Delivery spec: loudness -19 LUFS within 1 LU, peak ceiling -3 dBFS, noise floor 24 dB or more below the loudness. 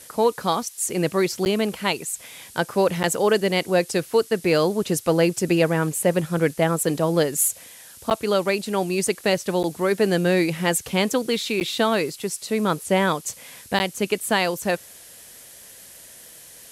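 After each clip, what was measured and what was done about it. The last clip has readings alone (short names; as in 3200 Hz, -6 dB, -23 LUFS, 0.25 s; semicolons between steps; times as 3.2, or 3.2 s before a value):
dropouts 6; longest dropout 9.7 ms; noise floor -45 dBFS; noise floor target -47 dBFS; loudness -22.5 LUFS; peak -7.5 dBFS; loudness target -19.0 LUFS
-> interpolate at 1.45/3.03/8.1/9.63/11.6/13.79, 9.7 ms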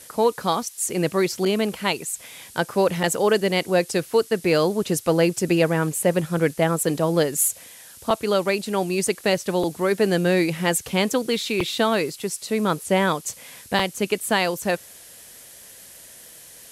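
dropouts 0; noise floor -45 dBFS; noise floor target -47 dBFS
-> denoiser 6 dB, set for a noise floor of -45 dBFS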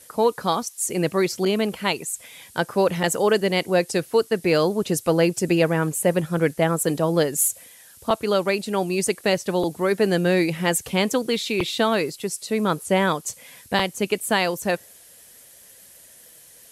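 noise floor -49 dBFS; loudness -22.5 LUFS; peak -7.5 dBFS; loudness target -19.0 LUFS
-> gain +3.5 dB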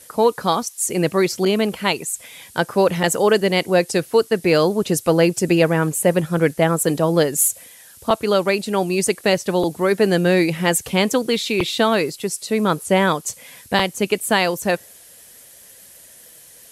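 loudness -19.0 LUFS; peak -4.0 dBFS; noise floor -46 dBFS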